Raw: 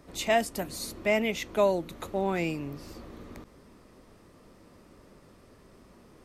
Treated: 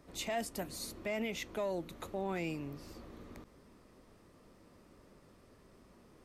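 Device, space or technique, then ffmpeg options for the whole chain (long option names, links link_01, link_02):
soft clipper into limiter: -af "asoftclip=type=tanh:threshold=-14dB,alimiter=limit=-22.5dB:level=0:latency=1:release=35,volume=-6dB"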